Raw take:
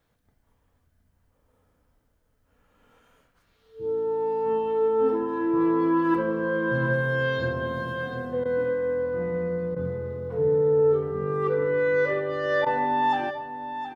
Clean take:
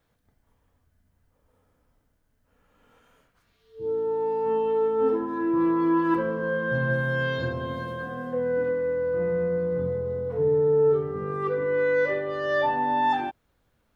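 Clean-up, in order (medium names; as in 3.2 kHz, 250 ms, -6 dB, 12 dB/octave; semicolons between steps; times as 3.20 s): interpolate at 8.44/9.75/12.65 s, 13 ms; inverse comb 720 ms -10.5 dB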